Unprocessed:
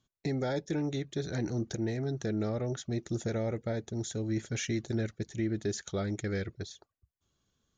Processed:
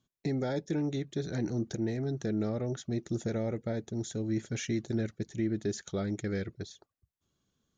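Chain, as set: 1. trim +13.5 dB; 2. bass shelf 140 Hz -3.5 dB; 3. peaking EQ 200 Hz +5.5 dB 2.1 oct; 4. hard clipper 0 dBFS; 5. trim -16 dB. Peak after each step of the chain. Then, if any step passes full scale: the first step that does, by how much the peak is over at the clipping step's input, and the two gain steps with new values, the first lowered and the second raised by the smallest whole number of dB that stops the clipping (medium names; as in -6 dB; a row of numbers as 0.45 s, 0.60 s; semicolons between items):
-8.5 dBFS, -8.5 dBFS, -5.5 dBFS, -5.5 dBFS, -21.5 dBFS; nothing clips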